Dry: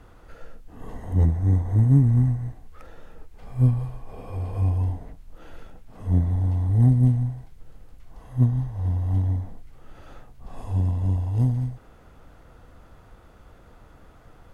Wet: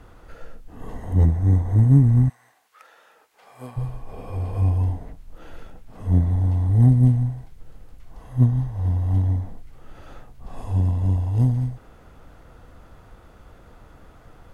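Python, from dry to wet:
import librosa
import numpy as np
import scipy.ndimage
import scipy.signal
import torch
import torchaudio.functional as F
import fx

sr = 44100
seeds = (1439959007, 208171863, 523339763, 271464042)

y = fx.highpass(x, sr, hz=fx.line((2.28, 1400.0), (3.76, 580.0)), slope=12, at=(2.28, 3.76), fade=0.02)
y = y * librosa.db_to_amplitude(2.5)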